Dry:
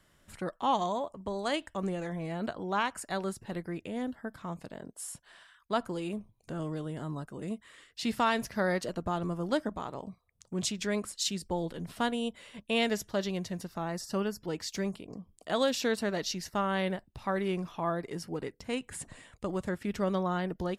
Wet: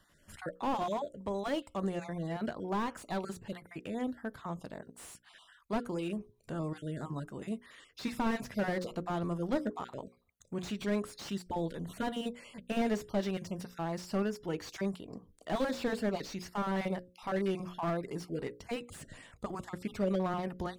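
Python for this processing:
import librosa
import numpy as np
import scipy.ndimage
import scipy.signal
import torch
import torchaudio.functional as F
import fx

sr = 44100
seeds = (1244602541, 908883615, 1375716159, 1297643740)

y = fx.spec_dropout(x, sr, seeds[0], share_pct=23)
y = fx.hum_notches(y, sr, base_hz=60, count=9)
y = fx.slew_limit(y, sr, full_power_hz=26.0)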